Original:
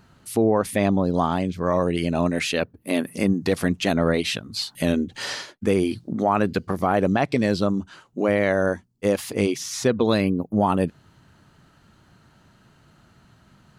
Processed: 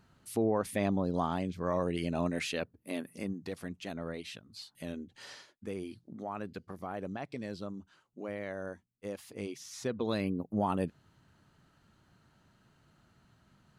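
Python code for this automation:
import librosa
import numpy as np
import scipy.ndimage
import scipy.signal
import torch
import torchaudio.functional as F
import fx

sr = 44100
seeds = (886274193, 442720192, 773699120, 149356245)

y = fx.gain(x, sr, db=fx.line((2.39, -10.0), (3.64, -19.0), (9.3, -19.0), (10.38, -10.5)))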